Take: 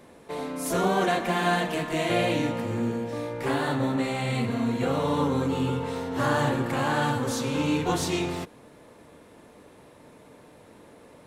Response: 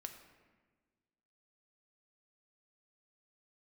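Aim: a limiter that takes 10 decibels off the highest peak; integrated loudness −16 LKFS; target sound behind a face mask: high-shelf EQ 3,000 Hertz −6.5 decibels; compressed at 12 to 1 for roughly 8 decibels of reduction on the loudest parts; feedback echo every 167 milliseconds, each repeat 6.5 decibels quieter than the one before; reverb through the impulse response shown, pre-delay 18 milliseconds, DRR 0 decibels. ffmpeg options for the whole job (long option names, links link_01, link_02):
-filter_complex "[0:a]acompressor=threshold=-28dB:ratio=12,alimiter=level_in=6dB:limit=-24dB:level=0:latency=1,volume=-6dB,aecho=1:1:167|334|501|668|835|1002:0.473|0.222|0.105|0.0491|0.0231|0.0109,asplit=2[link_01][link_02];[1:a]atrim=start_sample=2205,adelay=18[link_03];[link_02][link_03]afir=irnorm=-1:irlink=0,volume=4dB[link_04];[link_01][link_04]amix=inputs=2:normalize=0,highshelf=frequency=3000:gain=-6.5,volume=19dB"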